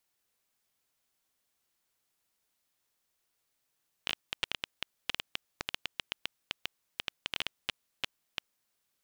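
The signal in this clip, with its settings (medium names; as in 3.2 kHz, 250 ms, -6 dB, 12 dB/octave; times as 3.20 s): random clicks 9.1 per s -13.5 dBFS 4.45 s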